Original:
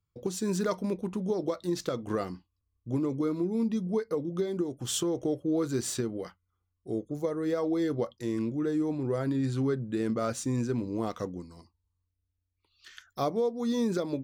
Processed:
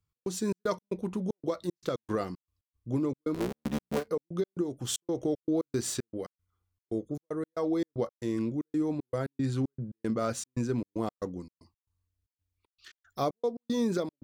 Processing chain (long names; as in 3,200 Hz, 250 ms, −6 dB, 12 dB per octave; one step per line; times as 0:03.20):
0:03.34–0:04.08: sub-harmonics by changed cycles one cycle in 3, muted
gate pattern "x.xx.x.xxx.xx." 115 BPM −60 dB